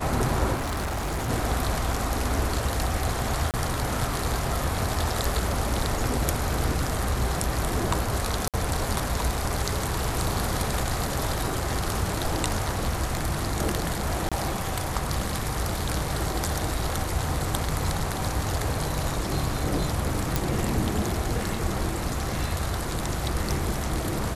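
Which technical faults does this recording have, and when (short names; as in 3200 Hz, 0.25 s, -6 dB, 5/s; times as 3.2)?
0.54–1.3 clipped -25.5 dBFS
3.51–3.54 gap 28 ms
8.48–8.54 gap 57 ms
14.29–14.32 gap 26 ms
20.36 pop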